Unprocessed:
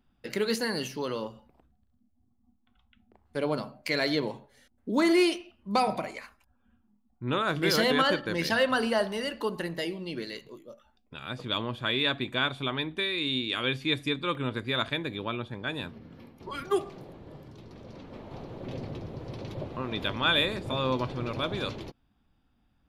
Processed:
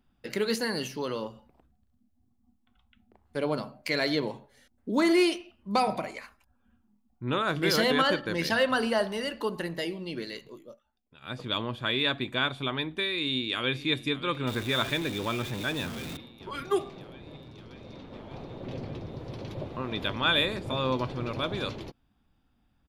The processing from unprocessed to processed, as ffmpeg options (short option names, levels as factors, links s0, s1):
-filter_complex "[0:a]asplit=2[s0][s1];[s1]afade=t=in:st=13.14:d=0.01,afade=t=out:st=13.88:d=0.01,aecho=0:1:580|1160|1740|2320|2900|3480|4060|4640|5220|5800|6380|6960:0.16788|0.134304|0.107443|0.0859548|0.0687638|0.0550111|0.0440088|0.0352071|0.0281657|0.0225325|0.018026|0.0144208[s2];[s0][s2]amix=inputs=2:normalize=0,asettb=1/sr,asplit=3[s3][s4][s5];[s3]atrim=end=14.474[s6];[s4]atrim=start=14.47:end=16.17,asetpts=PTS-STARTPTS,afade=t=in:d=0.004:c=qsin,afade=t=out:st=1.696:d=0.004:c=qsin,aeval=exprs='val(0)+0.5*0.0188*sgn(val(0))':c=same[s7];[s5]atrim=start=16.166[s8];[s6][s7]acrossfade=d=0.004:c1=hsin:c2=qsin[s9];[s9][s8]acrossfade=d=0.004:c1=qsin:c2=hsin,asettb=1/sr,asplit=3[s10][s11][s12];[s10]atrim=end=16.884[s13];[s11]atrim=start=16.88:end=19.12,asetpts=PTS-STARTPTS,afade=t=in:d=0.004:c=qsin,afade=t=out:st=2.236:d=0.004:c=qsin,highshelf=f=11000:g=-8[s14];[s12]atrim=start=19.116[s15];[s13][s14]acrossfade=d=0.004:c1=hsin:c2=qsin[s16];[s16][s15]acrossfade=d=0.004:c1=qsin:c2=hsin,asplit=3[s17][s18][s19];[s17]atrim=end=10.8,asetpts=PTS-STARTPTS,afade=t=out:st=10.66:d=0.14:c=qsin:silence=0.237137[s20];[s18]atrim=start=10.8:end=11.21,asetpts=PTS-STARTPTS,volume=0.237[s21];[s19]atrim=start=11.21,asetpts=PTS-STARTPTS,afade=t=in:d=0.14:c=qsin:silence=0.237137[s22];[s20][s21][s22]concat=n=3:v=0:a=1"